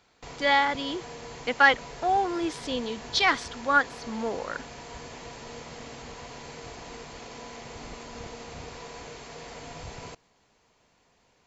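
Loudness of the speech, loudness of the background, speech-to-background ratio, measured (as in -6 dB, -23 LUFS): -25.5 LUFS, -42.0 LUFS, 16.5 dB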